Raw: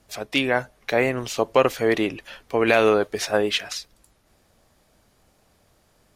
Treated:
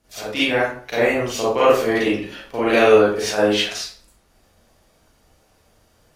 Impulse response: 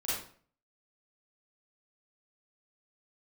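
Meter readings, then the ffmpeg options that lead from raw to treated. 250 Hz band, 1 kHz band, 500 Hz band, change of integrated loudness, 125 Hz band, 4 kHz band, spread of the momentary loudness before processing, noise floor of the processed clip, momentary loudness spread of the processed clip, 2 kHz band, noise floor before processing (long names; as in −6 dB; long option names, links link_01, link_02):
+3.5 dB, +3.5 dB, +4.5 dB, +3.5 dB, +1.0 dB, +4.0 dB, 10 LU, −59 dBFS, 13 LU, +3.0 dB, −63 dBFS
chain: -filter_complex "[1:a]atrim=start_sample=2205[link_01];[0:a][link_01]afir=irnorm=-1:irlink=0,volume=-1.5dB"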